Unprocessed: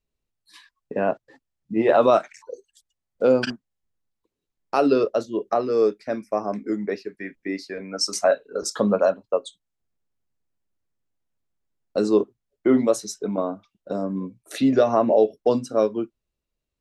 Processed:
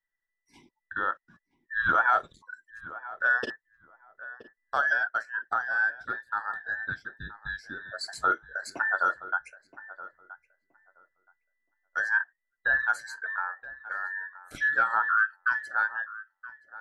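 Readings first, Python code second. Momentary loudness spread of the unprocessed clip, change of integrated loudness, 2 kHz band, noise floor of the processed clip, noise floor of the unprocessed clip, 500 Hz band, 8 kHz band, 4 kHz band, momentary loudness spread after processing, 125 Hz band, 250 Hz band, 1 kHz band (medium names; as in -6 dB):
15 LU, -5.5 dB, +12.5 dB, -84 dBFS, -83 dBFS, -22.5 dB, -15.0 dB, -10.5 dB, 19 LU, -15.5 dB, -26.5 dB, -1.0 dB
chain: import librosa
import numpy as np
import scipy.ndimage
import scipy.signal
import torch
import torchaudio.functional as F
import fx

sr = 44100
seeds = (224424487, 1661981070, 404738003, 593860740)

y = fx.band_invert(x, sr, width_hz=2000)
y = fx.high_shelf(y, sr, hz=2100.0, db=-11.0)
y = fx.echo_filtered(y, sr, ms=973, feedback_pct=18, hz=1400.0, wet_db=-14.5)
y = y * 10.0 ** (-3.5 / 20.0)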